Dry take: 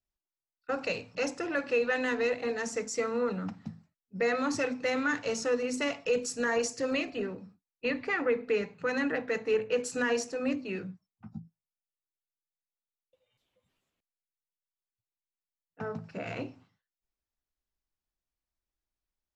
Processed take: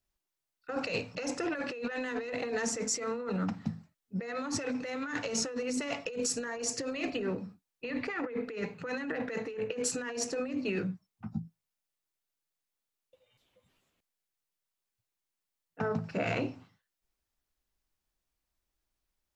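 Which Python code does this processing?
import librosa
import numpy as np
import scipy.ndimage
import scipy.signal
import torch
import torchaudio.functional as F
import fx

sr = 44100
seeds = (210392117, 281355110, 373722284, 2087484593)

y = fx.over_compress(x, sr, threshold_db=-36.0, ratio=-1.0)
y = F.gain(torch.from_numpy(y), 1.5).numpy()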